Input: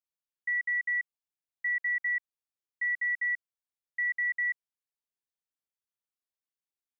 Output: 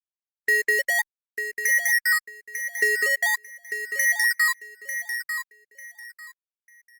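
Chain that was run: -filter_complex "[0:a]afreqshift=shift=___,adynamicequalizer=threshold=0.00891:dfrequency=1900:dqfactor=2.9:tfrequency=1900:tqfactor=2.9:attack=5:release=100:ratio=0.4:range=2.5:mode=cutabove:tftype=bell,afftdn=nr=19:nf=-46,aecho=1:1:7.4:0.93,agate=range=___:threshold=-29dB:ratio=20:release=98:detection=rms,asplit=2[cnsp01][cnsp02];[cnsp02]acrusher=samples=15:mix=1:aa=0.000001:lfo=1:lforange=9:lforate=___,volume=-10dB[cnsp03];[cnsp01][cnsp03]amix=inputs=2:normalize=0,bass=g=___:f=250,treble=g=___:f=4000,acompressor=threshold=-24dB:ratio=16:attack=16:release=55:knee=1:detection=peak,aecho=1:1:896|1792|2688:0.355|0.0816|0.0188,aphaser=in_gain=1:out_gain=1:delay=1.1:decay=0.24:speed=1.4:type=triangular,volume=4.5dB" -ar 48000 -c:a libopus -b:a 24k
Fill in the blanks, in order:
-53, -51dB, 0.44, -5, 12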